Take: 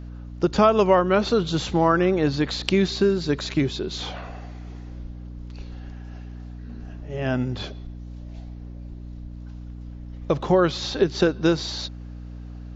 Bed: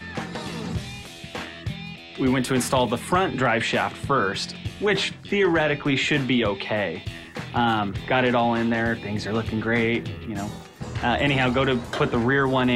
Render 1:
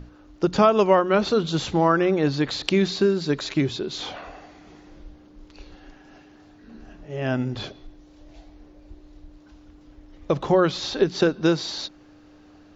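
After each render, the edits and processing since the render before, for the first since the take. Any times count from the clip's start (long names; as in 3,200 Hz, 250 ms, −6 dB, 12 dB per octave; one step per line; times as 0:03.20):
mains-hum notches 60/120/180/240 Hz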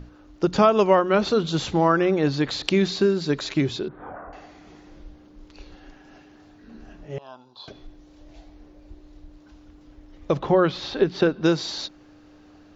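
0:03.88–0:04.33: Butterworth low-pass 1,600 Hz
0:07.18–0:07.68: pair of resonant band-passes 2,000 Hz, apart 2 octaves
0:10.39–0:11.44: low-pass filter 3,800 Hz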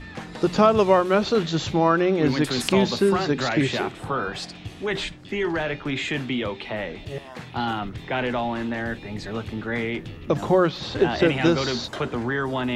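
mix in bed −5 dB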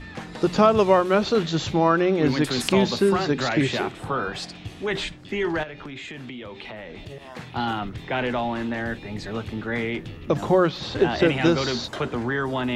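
0:05.63–0:07.30: downward compressor 12 to 1, threshold −33 dBFS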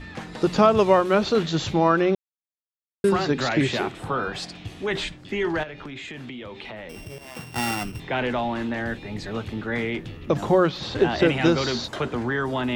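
0:02.15–0:03.04: silence
0:06.89–0:08.00: samples sorted by size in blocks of 16 samples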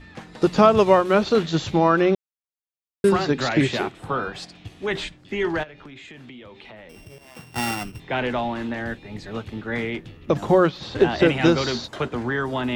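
in parallel at −2.5 dB: brickwall limiter −14 dBFS, peak gain reduction 9 dB
on the sum: expander for the loud parts 1.5 to 1, over −33 dBFS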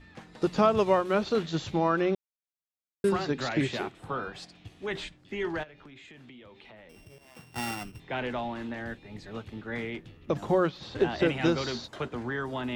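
level −8 dB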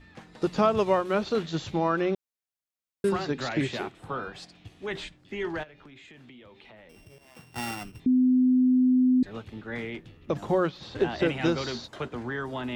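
0:08.06–0:09.23: beep over 254 Hz −17.5 dBFS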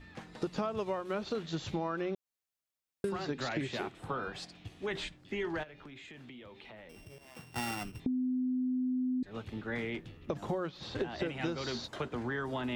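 downward compressor 6 to 1, threshold −32 dBFS, peak gain reduction 13.5 dB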